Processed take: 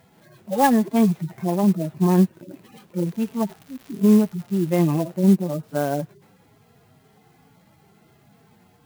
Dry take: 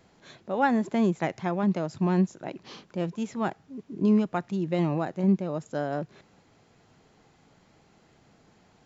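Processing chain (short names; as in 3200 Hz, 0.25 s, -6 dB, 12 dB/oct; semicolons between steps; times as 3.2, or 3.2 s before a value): median-filter separation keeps harmonic; 3.04–5.12 crackle 300/s -42 dBFS; clock jitter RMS 0.037 ms; gain +7 dB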